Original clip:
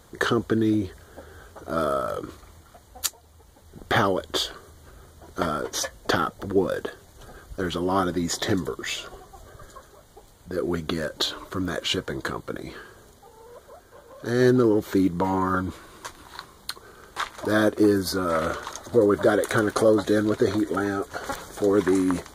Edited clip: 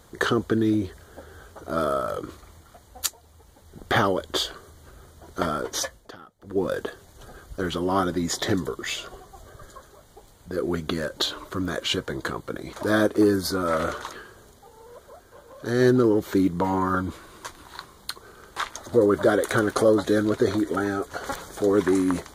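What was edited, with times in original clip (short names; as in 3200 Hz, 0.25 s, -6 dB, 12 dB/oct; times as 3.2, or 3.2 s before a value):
5.84–6.68 dip -22 dB, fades 0.27 s
17.35–18.75 move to 12.73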